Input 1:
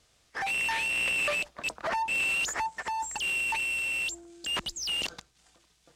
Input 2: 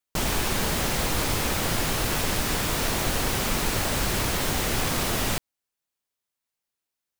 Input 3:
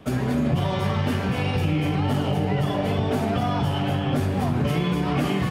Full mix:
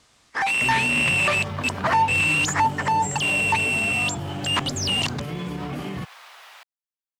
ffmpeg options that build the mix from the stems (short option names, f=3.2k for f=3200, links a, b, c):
-filter_complex "[0:a]equalizer=f=125:t=o:w=1:g=4,equalizer=f=250:t=o:w=1:g=9,equalizer=f=1k:t=o:w=1:g=10,equalizer=f=2k:t=o:w=1:g=5,equalizer=f=4k:t=o:w=1:g=4,equalizer=f=8k:t=o:w=1:g=5,volume=1dB[a];[1:a]highpass=f=790:w=0.5412,highpass=f=790:w=1.3066,acrossover=split=4300[b][c];[c]acompressor=threshold=-45dB:ratio=4:attack=1:release=60[d];[b][d]amix=inputs=2:normalize=0,adelay=1250,volume=-14dB[e];[2:a]adelay=550,volume=-2dB[f];[e][f]amix=inputs=2:normalize=0,alimiter=limit=-22.5dB:level=0:latency=1:release=87,volume=0dB[g];[a][g]amix=inputs=2:normalize=0"